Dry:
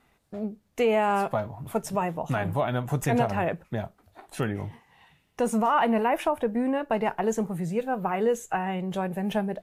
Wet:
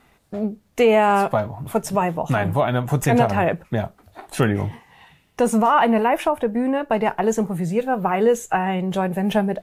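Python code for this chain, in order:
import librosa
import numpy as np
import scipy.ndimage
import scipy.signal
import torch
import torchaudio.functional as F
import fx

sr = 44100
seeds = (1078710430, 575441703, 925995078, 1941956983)

y = fx.rider(x, sr, range_db=4, speed_s=2.0)
y = y * librosa.db_to_amplitude(6.0)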